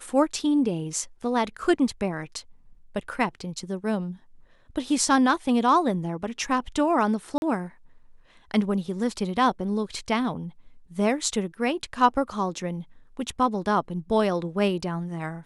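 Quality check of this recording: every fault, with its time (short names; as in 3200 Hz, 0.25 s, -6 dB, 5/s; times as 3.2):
7.38–7.42 gap 41 ms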